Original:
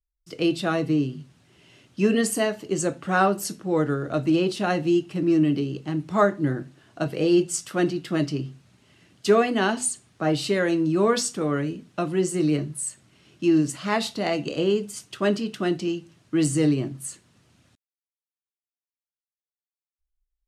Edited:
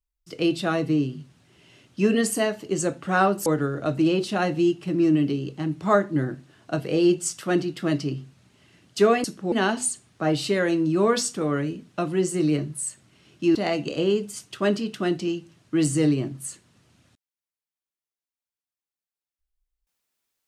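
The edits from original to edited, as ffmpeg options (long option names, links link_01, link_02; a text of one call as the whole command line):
ffmpeg -i in.wav -filter_complex "[0:a]asplit=5[link_01][link_02][link_03][link_04][link_05];[link_01]atrim=end=3.462[link_06];[link_02]atrim=start=3.738:end=9.522[link_07];[link_03]atrim=start=3.458:end=3.742[link_08];[link_04]atrim=start=9.518:end=13.552[link_09];[link_05]atrim=start=14.148[link_10];[link_06][link_07]acrossfade=duration=0.004:curve1=hsin:curve2=hsin[link_11];[link_11][link_08]acrossfade=duration=0.004:curve1=hsin:curve2=hsin[link_12];[link_12][link_09]acrossfade=duration=0.004:curve1=hsin:curve2=hsin[link_13];[link_13][link_10]acrossfade=duration=0.004:curve1=hsin:curve2=hsin" out.wav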